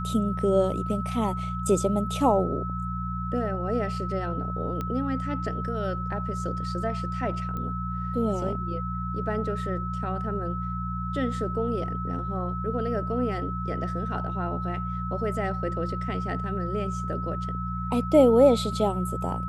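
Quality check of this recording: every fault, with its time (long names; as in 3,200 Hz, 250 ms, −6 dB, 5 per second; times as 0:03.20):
mains hum 60 Hz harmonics 3 −32 dBFS
whistle 1,300 Hz −33 dBFS
0:04.81: click −19 dBFS
0:07.57: click −23 dBFS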